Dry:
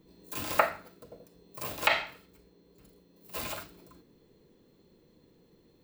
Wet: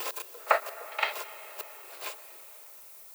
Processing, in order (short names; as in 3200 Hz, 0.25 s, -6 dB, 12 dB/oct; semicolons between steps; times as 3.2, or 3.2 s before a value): slices in reverse order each 0.187 s, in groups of 3; gate with hold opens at -50 dBFS; elliptic high-pass 400 Hz, stop band 60 dB; pre-echo 42 ms -12 dB; granular stretch 0.54×, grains 0.18 s; added noise violet -53 dBFS; reverb RT60 5.4 s, pre-delay 0.108 s, DRR 14 dB; gain +3 dB